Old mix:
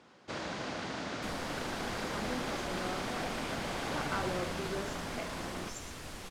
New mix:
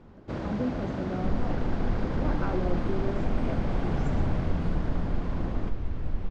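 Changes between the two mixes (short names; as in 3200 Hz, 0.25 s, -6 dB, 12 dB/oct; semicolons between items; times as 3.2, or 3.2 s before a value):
speech: entry -1.70 s; second sound: add air absorption 150 m; master: add tilt -4.5 dB/oct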